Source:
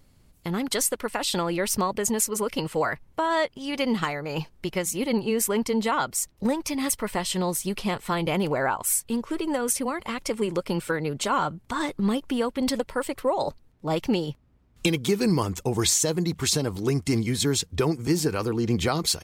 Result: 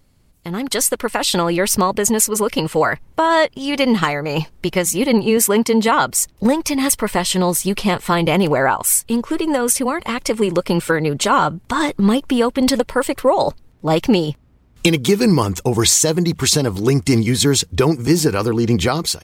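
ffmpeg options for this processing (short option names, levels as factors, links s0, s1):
-filter_complex "[0:a]asettb=1/sr,asplit=3[s0][s1][s2];[s0]atrim=end=5.374[s3];[s1]atrim=start=5.37:end=5.88,asetpts=PTS-STARTPTS,afade=t=in:d=0.004:c=qsin,afade=t=out:st=0.506:d=0.004:c=qsin,highpass=100[s4];[s2]atrim=start=5.876[s5];[s3][s4]acrossfade=d=0.004:c1=hsin:c2=qsin[s6];[s6][s5]acrossfade=d=0.004:c1=qsin:c2=hsin,dynaudnorm=f=470:g=3:m=2.99,volume=1.12"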